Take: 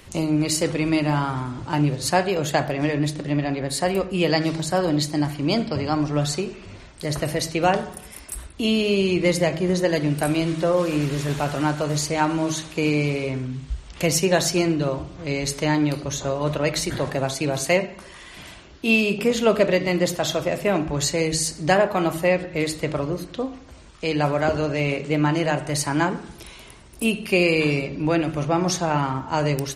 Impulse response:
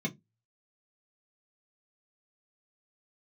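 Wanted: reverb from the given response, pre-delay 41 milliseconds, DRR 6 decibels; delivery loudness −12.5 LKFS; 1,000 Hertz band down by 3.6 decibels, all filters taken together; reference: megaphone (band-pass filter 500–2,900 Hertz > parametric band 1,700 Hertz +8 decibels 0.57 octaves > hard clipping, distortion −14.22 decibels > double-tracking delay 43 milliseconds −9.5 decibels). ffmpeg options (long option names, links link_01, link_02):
-filter_complex "[0:a]equalizer=frequency=1000:width_type=o:gain=-5.5,asplit=2[link_01][link_02];[1:a]atrim=start_sample=2205,adelay=41[link_03];[link_02][link_03]afir=irnorm=-1:irlink=0,volume=-10dB[link_04];[link_01][link_04]amix=inputs=2:normalize=0,highpass=500,lowpass=2900,equalizer=frequency=1700:width_type=o:width=0.57:gain=8,asoftclip=type=hard:threshold=-18dB,asplit=2[link_05][link_06];[link_06]adelay=43,volume=-9.5dB[link_07];[link_05][link_07]amix=inputs=2:normalize=0,volume=13dB"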